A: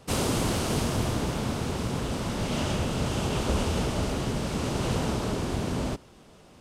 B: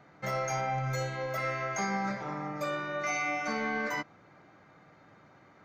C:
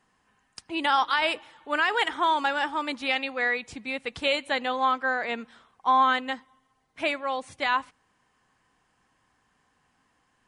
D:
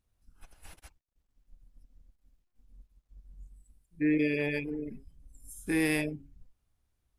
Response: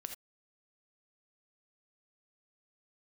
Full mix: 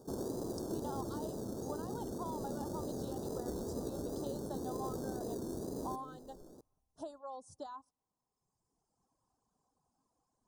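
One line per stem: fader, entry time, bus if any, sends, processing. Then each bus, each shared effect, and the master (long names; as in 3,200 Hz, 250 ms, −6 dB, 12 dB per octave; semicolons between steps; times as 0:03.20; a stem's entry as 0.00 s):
−11.0 dB, 0.00 s, bus B, no send, parametric band 370 Hz +14.5 dB 1.7 octaves; decimation without filtering 21×
−17.0 dB, 1.15 s, bus A, no send, no processing
−6.0 dB, 0.00 s, bus A, no send, no processing
−7.5 dB, 0.00 s, bus B, no send, downward compressor, threshold −35 dBFS, peak gain reduction 11 dB
bus A: 0.0 dB, reverb reduction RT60 1.4 s; downward compressor 4 to 1, threshold −41 dBFS, peak gain reduction 14.5 dB
bus B: 0.0 dB, tape wow and flutter 110 cents; downward compressor 2 to 1, threshold −44 dBFS, peak gain reduction 11 dB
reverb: not used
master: Chebyshev band-stop filter 860–5,700 Hz, order 2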